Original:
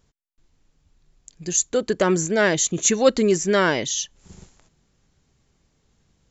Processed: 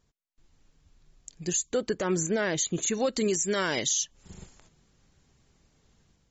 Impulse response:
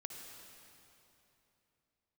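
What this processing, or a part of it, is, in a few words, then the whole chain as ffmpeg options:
low-bitrate web radio: -filter_complex "[0:a]asplit=3[link_01][link_02][link_03];[link_01]afade=type=out:start_time=3.12:duration=0.02[link_04];[link_02]aemphasis=mode=production:type=75fm,afade=type=in:start_time=3.12:duration=0.02,afade=type=out:start_time=4.03:duration=0.02[link_05];[link_03]afade=type=in:start_time=4.03:duration=0.02[link_06];[link_04][link_05][link_06]amix=inputs=3:normalize=0,dynaudnorm=framelen=130:gausssize=5:maxgain=6.5dB,alimiter=limit=-11.5dB:level=0:latency=1:release=142,volume=-6dB" -ar 48000 -c:a libmp3lame -b:a 32k

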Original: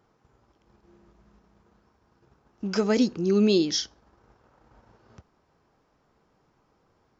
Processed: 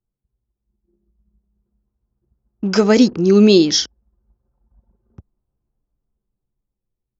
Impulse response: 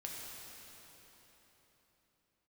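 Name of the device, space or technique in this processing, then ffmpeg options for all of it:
voice memo with heavy noise removal: -af "anlmdn=0.0631,dynaudnorm=framelen=230:gausssize=13:maxgain=10.5dB,volume=1.5dB"

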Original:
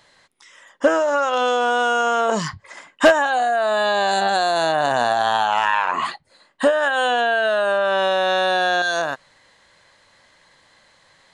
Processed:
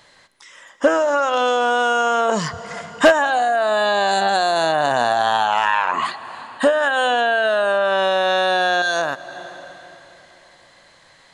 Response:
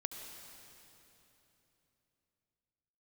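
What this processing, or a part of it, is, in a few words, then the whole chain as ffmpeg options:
ducked reverb: -filter_complex "[0:a]asplit=3[link_01][link_02][link_03];[1:a]atrim=start_sample=2205[link_04];[link_02][link_04]afir=irnorm=-1:irlink=0[link_05];[link_03]apad=whole_len=500066[link_06];[link_05][link_06]sidechaincompress=threshold=-28dB:ratio=8:attack=16:release=358,volume=-3dB[link_07];[link_01][link_07]amix=inputs=2:normalize=0"

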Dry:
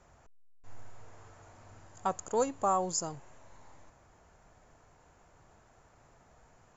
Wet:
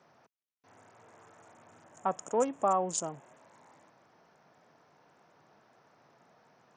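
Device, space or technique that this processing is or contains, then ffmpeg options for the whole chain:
Bluetooth headset: -filter_complex "[0:a]asettb=1/sr,asplit=3[link_01][link_02][link_03];[link_01]atrim=end=1.844[link_04];[link_02]atrim=start=1.84:end=3.36,asetpts=PTS-STARTPTS,afade=type=in:duration=0.004:curve=qsin,afade=type=out:start_time=1.516:duration=0.004:curve=qsin,equalizer=frequency=250:width_type=o:width=0.33:gain=3,equalizer=frequency=630:width_type=o:width=0.33:gain=4,equalizer=frequency=5000:width_type=o:width=0.33:gain=-7[link_05];[link_03]atrim=start=3.356[link_06];[link_04][link_05]acrossfade=duration=0.004:curve1=hsin:curve2=qsin[link_07];[link_07][link_06]acrossfade=duration=0.004:curve1=qsin:curve2=hsin,highpass=frequency=150:width=0.5412,highpass=frequency=150:width=1.3066,aresample=16000,aresample=44100" -ar 48000 -c:a sbc -b:a 64k

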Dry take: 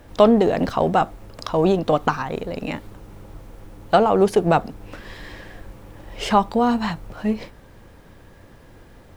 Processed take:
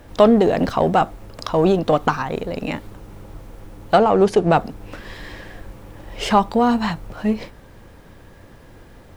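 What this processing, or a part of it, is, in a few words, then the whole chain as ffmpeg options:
parallel distortion: -filter_complex "[0:a]asplit=2[link_01][link_02];[link_02]asoftclip=type=hard:threshold=-15dB,volume=-10.5dB[link_03];[link_01][link_03]amix=inputs=2:normalize=0,asettb=1/sr,asplit=3[link_04][link_05][link_06];[link_04]atrim=end=3.984[link_07];[link_05]atrim=start=3.98:end=4.57,asetpts=PTS-STARTPTS,afade=type=in:duration=0.004:curve=qsin,afade=type=out:start_time=0.586:duration=0.004:curve=qsin,lowpass=8200[link_08];[link_06]atrim=start=4.566[link_09];[link_07][link_08]acrossfade=duration=0.004:curve1=hsin:curve2=qsin[link_10];[link_10][link_09]acrossfade=duration=0.004:curve1=qsin:curve2=hsin"

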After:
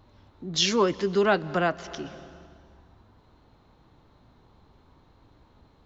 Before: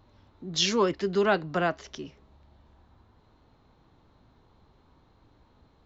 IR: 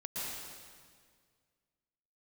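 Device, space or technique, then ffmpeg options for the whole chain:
ducked reverb: -filter_complex "[0:a]asplit=3[link_01][link_02][link_03];[1:a]atrim=start_sample=2205[link_04];[link_02][link_04]afir=irnorm=-1:irlink=0[link_05];[link_03]apad=whole_len=258096[link_06];[link_05][link_06]sidechaincompress=threshold=-36dB:ratio=8:attack=30:release=284,volume=-12dB[link_07];[link_01][link_07]amix=inputs=2:normalize=0,volume=1.5dB"

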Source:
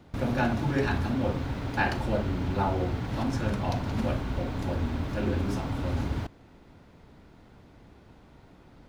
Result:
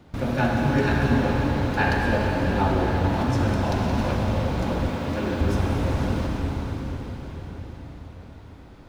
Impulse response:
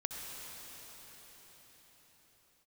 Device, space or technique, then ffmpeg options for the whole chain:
cathedral: -filter_complex "[1:a]atrim=start_sample=2205[link_01];[0:a][link_01]afir=irnorm=-1:irlink=0,asettb=1/sr,asplit=3[link_02][link_03][link_04];[link_02]atrim=end=4.894[link_05];[link_03]atrim=start=4.89:end=5.41,asetpts=PTS-STARTPTS,afade=type=in:duration=0.004:curve=qsin,afade=type=out:start_time=0.516:duration=0.004:curve=qsin,highpass=frequency=180:poles=1[link_06];[link_04]atrim=start=5.406[link_07];[link_05][link_06]acrossfade=duration=0.004:curve1=hsin:curve2=qsin[link_08];[link_08][link_07]acrossfade=duration=0.004:curve1=qsin:curve2=hsin,volume=4.5dB"

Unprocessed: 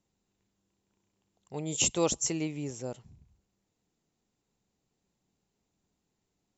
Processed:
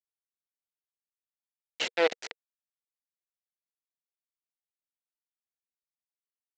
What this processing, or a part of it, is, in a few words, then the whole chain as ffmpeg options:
hand-held game console: -af "acrusher=bits=3:mix=0:aa=0.000001,highpass=420,equalizer=frequency=470:width_type=q:width=4:gain=8,equalizer=frequency=1100:width_type=q:width=4:gain=-7,equalizer=frequency=2000:width_type=q:width=4:gain=8,lowpass=frequency=4300:width=0.5412,lowpass=frequency=4300:width=1.3066"

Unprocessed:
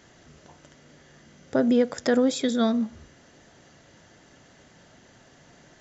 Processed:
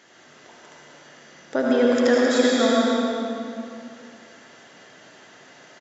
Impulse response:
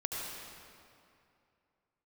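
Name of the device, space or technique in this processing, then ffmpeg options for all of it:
stadium PA: -filter_complex "[0:a]highpass=240,equalizer=frequency=2100:width_type=o:width=2.8:gain=5,aecho=1:1:186.6|265.3:0.316|0.447[link_01];[1:a]atrim=start_sample=2205[link_02];[link_01][link_02]afir=irnorm=-1:irlink=0"

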